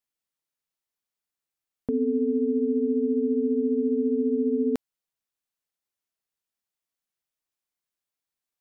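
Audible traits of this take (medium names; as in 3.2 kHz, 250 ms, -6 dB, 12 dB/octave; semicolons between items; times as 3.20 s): noise floor -90 dBFS; spectral tilt +11.5 dB/octave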